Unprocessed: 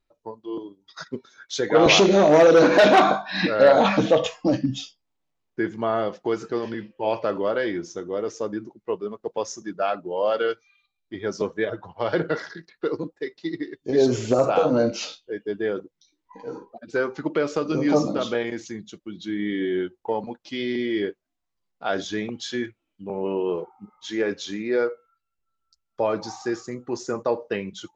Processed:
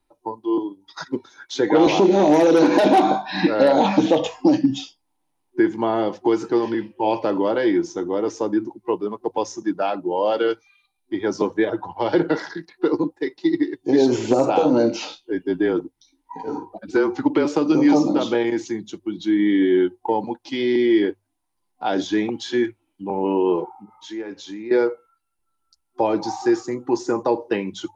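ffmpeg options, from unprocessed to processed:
-filter_complex "[0:a]asettb=1/sr,asplit=3[a][b][c];[a]atrim=end=15.214[d];[b]atrim=start=15.21:end=17.45,asetpts=PTS-STARTPTS,afade=t=in:d=0.004:c=qsin,afade=t=out:st=2.236:d=0.004:c=qsin,afreqshift=-28[e];[c]atrim=start=17.446[f];[d][e]acrossfade=d=0.004:c1=hsin:c2=qsin[g];[g][f]acrossfade=d=0.004:c1=qsin:c2=hsin,asettb=1/sr,asplit=3[h][i][j];[h]atrim=end=23.764[k];[i]atrim=start=23.76:end=24.71,asetpts=PTS-STARTPTS,afade=t=in:d=0.004:c=qsin,afade=t=out:st=0.946:d=0.004:c=qsin,acompressor=threshold=-47dB:ratio=2:attack=3.2:release=140:knee=1:detection=peak[l];[j]atrim=start=24.706[m];[k][l]acrossfade=d=0.004:c1=hsin:c2=qsin[n];[n][m]acrossfade=d=0.004:c1=qsin:c2=hsin,superequalizer=6b=2.24:9b=2.82:16b=3.16,acrossover=split=140|640|1900|4200[o][p][q][r][s];[o]acompressor=threshold=-48dB:ratio=4[t];[p]acompressor=threshold=-17dB:ratio=4[u];[q]acompressor=threshold=-34dB:ratio=4[v];[r]acompressor=threshold=-37dB:ratio=4[w];[s]acompressor=threshold=-43dB:ratio=4[x];[t][u][v][w][x]amix=inputs=5:normalize=0,bandreject=f=50:t=h:w=6,bandreject=f=100:t=h:w=6,volume=4dB"

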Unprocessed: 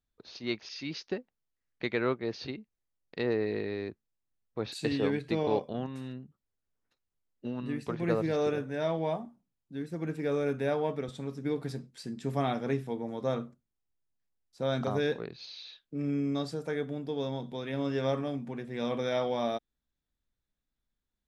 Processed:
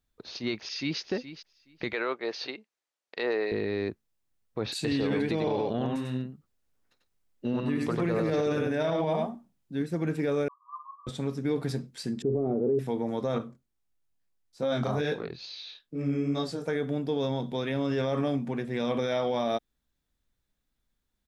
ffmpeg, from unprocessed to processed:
-filter_complex "[0:a]asplit=2[a][b];[b]afade=t=in:st=0.6:d=0.01,afade=t=out:st=1:d=0.01,aecho=0:1:420|840:0.223872|0.0335808[c];[a][c]amix=inputs=2:normalize=0,asettb=1/sr,asplit=3[d][e][f];[d]atrim=end=1.934[g];[e]atrim=start=1.93:end=3.52,asetpts=PTS-STARTPTS,afade=t=in:d=0.004:c=qsin,afade=t=out:st=1.586:d=0.004:c=qsin,highpass=510,lowpass=7.6k[h];[f]atrim=start=3.516[i];[g][h]acrossfade=d=0.004:c1=hsin:c2=qsin[j];[j][i]acrossfade=d=0.004:c1=qsin:c2=hsin,asettb=1/sr,asplit=3[k][l][m];[k]atrim=end=4.904[n];[l]atrim=start=4.9:end=9.82,asetpts=PTS-STARTPTS,afade=t=in:d=0.004:c=qsin,afade=t=out:st=4.916:d=0.004:c=qsin,aecho=1:1:94:0.631,atrim=end_sample=216972[o];[m]atrim=start=9.816[p];[n][o]acrossfade=d=0.004:c1=hsin:c2=qsin[q];[q][p]acrossfade=d=0.004:c1=qsin:c2=hsin,asettb=1/sr,asplit=3[r][s][t];[r]atrim=end=10.484[u];[s]atrim=start=10.48:end=11.07,asetpts=PTS-STARTPTS,afade=t=in:d=0.004:c=qsin,afade=t=out:st=0.586:d=0.004:c=qsin,asuperpass=centerf=1100:order=20:qfactor=4.5[v];[t]atrim=start=11.066[w];[u][v]acrossfade=d=0.004:c1=hsin:c2=qsin[x];[x][w]acrossfade=d=0.004:c1=qsin:c2=hsin,asettb=1/sr,asplit=3[y][z][aa];[y]atrim=end=12.224[ab];[z]atrim=start=12.22:end=12.79,asetpts=PTS-STARTPTS,afade=t=in:d=0.004:c=qsin,afade=t=out:st=0.566:d=0.004:c=qsin,lowpass=f=410:t=q:w=4.8[ac];[aa]atrim=start=12.786[ad];[ab][ac]acrossfade=d=0.004:c1=hsin:c2=qsin[ae];[ae][ad]acrossfade=d=0.004:c1=qsin:c2=hsin,asettb=1/sr,asplit=3[af][ag][ah];[af]atrim=end=13.384[ai];[ag]atrim=start=13.38:end=16.68,asetpts=PTS-STARTPTS,afade=t=in:d=0.004:c=qsin,afade=t=out:st=3.296:d=0.004:c=qsin,flanger=delay=18.5:depth=5.2:speed=2.3[aj];[ah]atrim=start=16.676[ak];[ai][aj]acrossfade=d=0.004:c1=hsin:c2=qsin[al];[al][ak]acrossfade=d=0.004:c1=qsin:c2=hsin,alimiter=level_in=2dB:limit=-24dB:level=0:latency=1:release=33,volume=-2dB,volume=6.5dB"

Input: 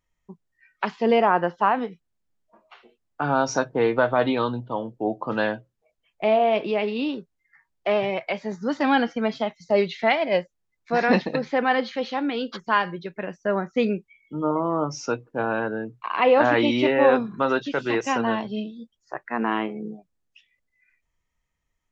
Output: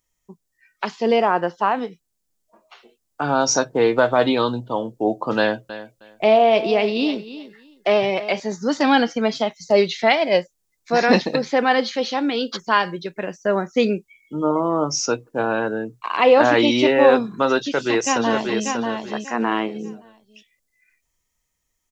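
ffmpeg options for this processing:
-filter_complex "[0:a]asettb=1/sr,asplit=3[a][b][c];[a]atrim=end=5.384[d];[b]atrim=start=5.38:end=8.4,asetpts=PTS-STARTPTS,afade=t=in:d=0.004:c=qsin,afade=t=out:st=3.016:d=0.004:c=qsin,aecho=1:1:313|626:0.188|0.0339,atrim=end_sample=133182[e];[c]atrim=start=8.396[f];[d][e]acrossfade=d=0.004:c1=hsin:c2=qsin[g];[g][f]acrossfade=d=0.004:c1=qsin:c2=hsin,asplit=2[h][i];[i]afade=t=in:st=17.57:d=0.01,afade=t=out:st=18.65:d=0.01,aecho=0:1:590|1180|1770:0.595662|0.148916|0.0372289[j];[h][j]amix=inputs=2:normalize=0,lowshelf=f=470:g=6.5,dynaudnorm=f=860:g=9:m=11.5dB,bass=f=250:g=-7,treble=f=4k:g=15,volume=-1dB"

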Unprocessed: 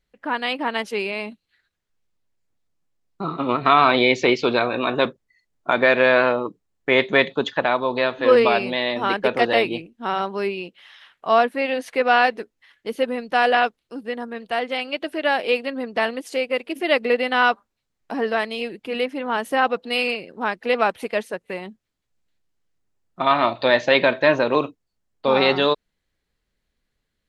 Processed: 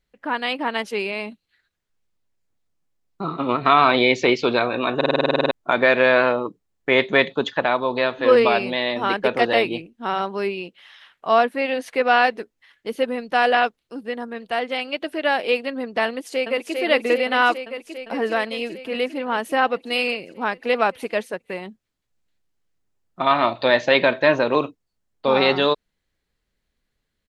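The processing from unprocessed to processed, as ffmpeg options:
-filter_complex "[0:a]asplit=2[a][b];[b]afade=t=in:st=16.06:d=0.01,afade=t=out:st=16.77:d=0.01,aecho=0:1:400|800|1200|1600|2000|2400|2800|3200|3600|4000|4400|4800:0.668344|0.501258|0.375943|0.281958|0.211468|0.158601|0.118951|0.0892131|0.0669099|0.0501824|0.0376368|0.0282276[c];[a][c]amix=inputs=2:normalize=0,asplit=12[d][e][f][g][h][i][j][k][l][m][n][o];[d]atrim=end=5.012[p];[e]atrim=start=4.958:end=5.012[q];[f]atrim=start=4.958:end=5.012[r];[g]atrim=start=4.958:end=5.012[s];[h]atrim=start=4.958:end=5.012[t];[i]atrim=start=4.958:end=5.012[u];[j]atrim=start=4.958:end=5.012[v];[k]atrim=start=4.958:end=5.012[w];[l]atrim=start=4.958:end=5.012[x];[m]atrim=start=4.958:end=5.012[y];[n]atrim=start=4.958:end=5.012[z];[o]atrim=start=5.508[aa];[p][q]acrossfade=d=0.004:c1=hsin:c2=hsin[ab];[ab][r]acrossfade=d=0.004:c1=hsin:c2=hsin[ac];[ac][s]acrossfade=d=0.004:c1=hsin:c2=hsin[ad];[ad][t]acrossfade=d=0.004:c1=hsin:c2=hsin[ae];[ae][u]acrossfade=d=0.004:c1=hsin:c2=hsin[af];[af][v]acrossfade=d=0.004:c1=hsin:c2=hsin[ag];[ag][w]acrossfade=d=0.004:c1=hsin:c2=hsin[ah];[ah][x]acrossfade=d=0.004:c1=hsin:c2=hsin[ai];[ai][y]acrossfade=d=0.004:c1=hsin:c2=hsin[aj];[aj][z]acrossfade=d=0.004:c1=hsin:c2=hsin[ak];[ak][aa]acrossfade=d=0.004:c1=hsin:c2=hsin"

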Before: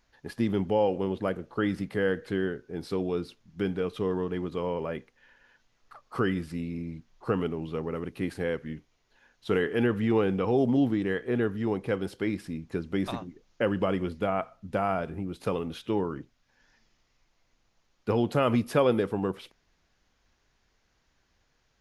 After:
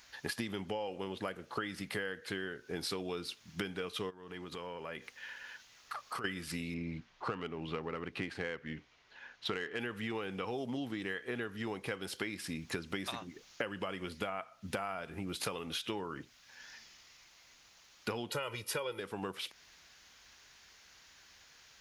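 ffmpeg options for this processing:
-filter_complex "[0:a]asplit=3[a][b][c];[a]afade=t=out:st=4.09:d=0.02[d];[b]acompressor=threshold=-45dB:ratio=6:attack=3.2:release=140:knee=1:detection=peak,afade=t=in:st=4.09:d=0.02,afade=t=out:st=6.24:d=0.02[e];[c]afade=t=in:st=6.24:d=0.02[f];[d][e][f]amix=inputs=3:normalize=0,asettb=1/sr,asplit=3[g][h][i];[g]atrim=end=6.744[j];[h]atrim=start=6.74:end=9.79,asetpts=PTS-STARTPTS,afade=t=in:d=0.004:c=qsin,afade=t=out:st=3.046:d=0.004:c=qsin,adynamicsmooth=sensitivity=4.5:basefreq=3.3k[k];[i]atrim=start=9.786[l];[j][k]acrossfade=d=0.004:c1=hsin:c2=qsin[m];[m][l]acrossfade=d=0.004:c1=qsin:c2=hsin,asettb=1/sr,asplit=3[n][o][p];[n]atrim=end=18.304[q];[o]atrim=start=18.3:end=19,asetpts=PTS-STARTPTS,afade=t=in:d=0.004:c=qsin,afade=t=out:st=0.696:d=0.004:c=qsin,aecho=1:1:2.1:0.81,atrim=end_sample=30870[r];[p]atrim=start=18.996[s];[q][r]acrossfade=d=0.004:c1=hsin:c2=qsin[t];[t][s]acrossfade=d=0.004:c1=qsin:c2=hsin,tiltshelf=f=970:g=-8.5,acompressor=threshold=-43dB:ratio=16,highpass=45,volume=8.5dB"

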